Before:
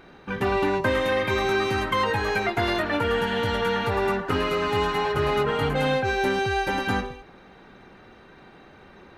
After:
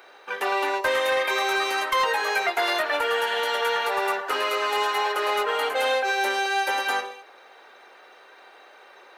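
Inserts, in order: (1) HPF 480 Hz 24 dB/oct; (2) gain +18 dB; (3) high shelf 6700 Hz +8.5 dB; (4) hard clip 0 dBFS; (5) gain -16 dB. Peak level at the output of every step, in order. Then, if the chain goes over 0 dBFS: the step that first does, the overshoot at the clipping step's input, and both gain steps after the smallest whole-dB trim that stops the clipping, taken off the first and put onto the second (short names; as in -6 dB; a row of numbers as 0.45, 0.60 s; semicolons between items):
-11.5, +6.5, +7.0, 0.0, -16.0 dBFS; step 2, 7.0 dB; step 2 +11 dB, step 5 -9 dB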